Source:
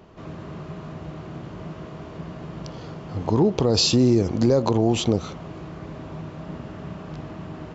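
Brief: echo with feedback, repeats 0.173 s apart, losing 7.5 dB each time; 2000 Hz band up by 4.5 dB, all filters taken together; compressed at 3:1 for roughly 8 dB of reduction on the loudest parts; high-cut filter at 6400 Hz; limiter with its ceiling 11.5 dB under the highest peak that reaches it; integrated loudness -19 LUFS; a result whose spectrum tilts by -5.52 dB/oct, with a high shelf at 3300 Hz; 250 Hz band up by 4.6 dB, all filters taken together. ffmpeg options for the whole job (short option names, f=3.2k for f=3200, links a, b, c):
-af "lowpass=6.4k,equalizer=f=250:t=o:g=5.5,equalizer=f=2k:t=o:g=4,highshelf=f=3.3k:g=5.5,acompressor=threshold=-21dB:ratio=3,alimiter=limit=-20.5dB:level=0:latency=1,aecho=1:1:173|346|519|692|865:0.422|0.177|0.0744|0.0312|0.0131,volume=12.5dB"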